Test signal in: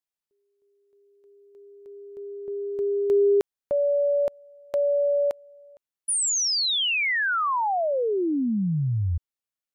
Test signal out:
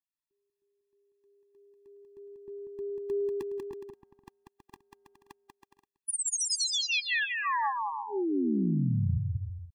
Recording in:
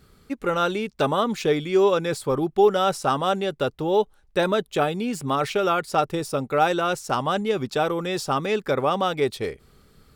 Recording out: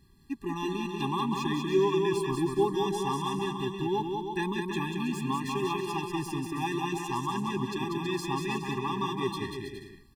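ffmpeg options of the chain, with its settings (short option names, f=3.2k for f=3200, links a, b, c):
-af "aecho=1:1:190|323|416.1|481.3|526.9:0.631|0.398|0.251|0.158|0.1,afftfilt=real='re*eq(mod(floor(b*sr/1024/400),2),0)':imag='im*eq(mod(floor(b*sr/1024/400),2),0)':win_size=1024:overlap=0.75,volume=-5dB"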